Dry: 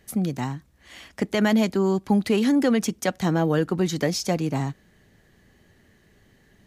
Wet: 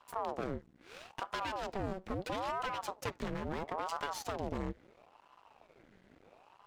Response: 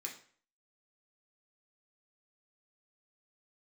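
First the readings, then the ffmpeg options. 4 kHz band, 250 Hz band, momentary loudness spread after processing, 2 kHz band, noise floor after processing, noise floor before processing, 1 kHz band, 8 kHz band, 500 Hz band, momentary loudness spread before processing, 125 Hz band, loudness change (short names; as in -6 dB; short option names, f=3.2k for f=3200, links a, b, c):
-13.0 dB, -22.0 dB, 8 LU, -11.5 dB, -66 dBFS, -60 dBFS, -5.5 dB, -16.5 dB, -15.0 dB, 11 LU, -18.0 dB, -16.0 dB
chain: -filter_complex "[0:a]aemphasis=mode=reproduction:type=75fm,acrossover=split=780|6100[a][b][c];[a]alimiter=limit=-23.5dB:level=0:latency=1:release=32[d];[d][b][c]amix=inputs=3:normalize=0,acompressor=threshold=-31dB:ratio=3,aeval=exprs='max(val(0),0)':c=same,asplit=2[e][f];[1:a]atrim=start_sample=2205,atrim=end_sample=3087[g];[f][g]afir=irnorm=-1:irlink=0,volume=-14dB[h];[e][h]amix=inputs=2:normalize=0,aeval=exprs='val(0)*sin(2*PI*600*n/s+600*0.7/0.75*sin(2*PI*0.75*n/s))':c=same,volume=1dB"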